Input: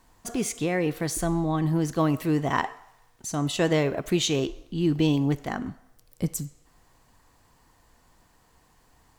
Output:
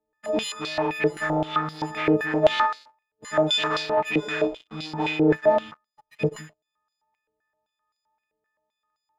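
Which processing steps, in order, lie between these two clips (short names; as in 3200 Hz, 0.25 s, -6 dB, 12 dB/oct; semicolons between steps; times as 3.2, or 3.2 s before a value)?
frequency quantiser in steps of 6 st; sample leveller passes 5; tilt -3 dB/oct; stepped band-pass 7.7 Hz 470–4400 Hz; gain -2 dB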